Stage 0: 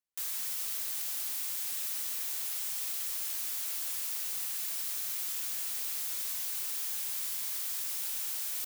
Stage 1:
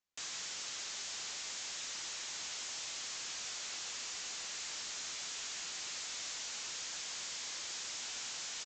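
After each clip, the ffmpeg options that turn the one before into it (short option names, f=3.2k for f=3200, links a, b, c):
-filter_complex "[0:a]aresample=16000,asoftclip=type=tanh:threshold=-39.5dB,aresample=44100,asplit=2[a][b];[b]adelay=12,volume=-12dB[c];[a][c]amix=inputs=2:normalize=0,volume=3.5dB"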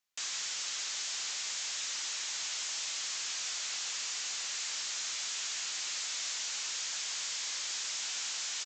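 -af "tiltshelf=f=640:g=-6"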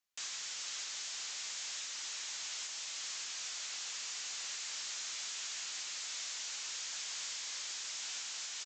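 -af "alimiter=level_in=5dB:limit=-24dB:level=0:latency=1:release=440,volume=-5dB,volume=-3.5dB"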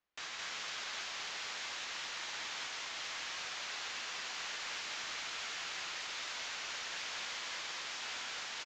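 -af "aecho=1:1:55.39|215.7:0.251|0.794,adynamicsmooth=sensitivity=1:basefreq=2.5k,volume=8dB"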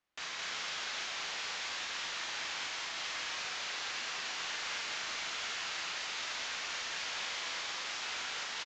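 -filter_complex "[0:a]lowpass=8.8k,asplit=2[a][b];[b]adelay=39,volume=-5dB[c];[a][c]amix=inputs=2:normalize=0,volume=2dB"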